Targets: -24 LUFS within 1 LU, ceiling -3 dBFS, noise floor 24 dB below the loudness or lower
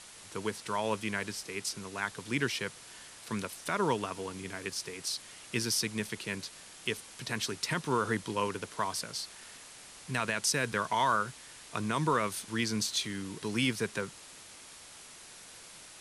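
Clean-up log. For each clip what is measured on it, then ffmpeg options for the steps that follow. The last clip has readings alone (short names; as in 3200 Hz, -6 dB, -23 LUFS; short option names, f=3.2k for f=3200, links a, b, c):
noise floor -51 dBFS; noise floor target -58 dBFS; loudness -33.5 LUFS; peak -17.0 dBFS; loudness target -24.0 LUFS
-> -af "afftdn=nr=7:nf=-51"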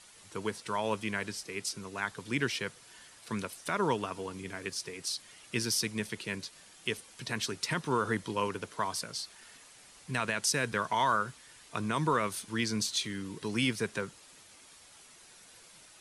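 noise floor -56 dBFS; noise floor target -58 dBFS
-> -af "afftdn=nr=6:nf=-56"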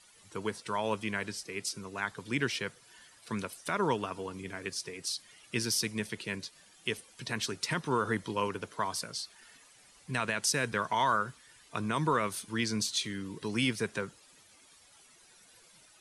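noise floor -60 dBFS; loudness -33.5 LUFS; peak -17.0 dBFS; loudness target -24.0 LUFS
-> -af "volume=9.5dB"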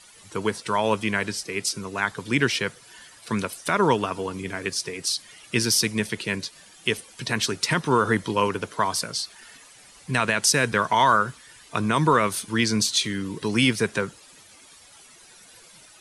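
loudness -24.0 LUFS; peak -7.5 dBFS; noise floor -51 dBFS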